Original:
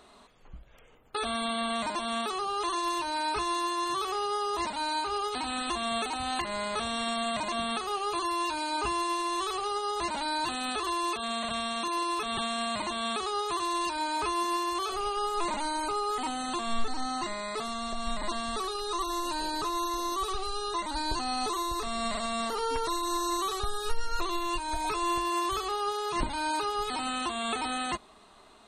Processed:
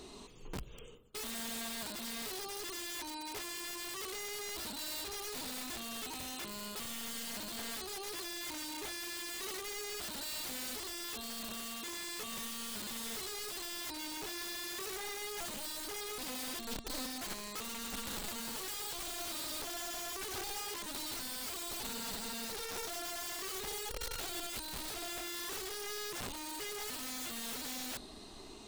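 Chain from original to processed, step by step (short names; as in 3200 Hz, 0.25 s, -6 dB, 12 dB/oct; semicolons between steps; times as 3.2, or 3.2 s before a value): moving spectral ripple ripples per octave 0.73, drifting +0.35 Hz, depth 6 dB; notch 3400 Hz, Q 26; reverse; compressor 6:1, threshold -43 dBFS, peak gain reduction 22 dB; reverse; band shelf 1200 Hz -11 dB 2.3 oct; wrapped overs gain 44.5 dB; gain +8.5 dB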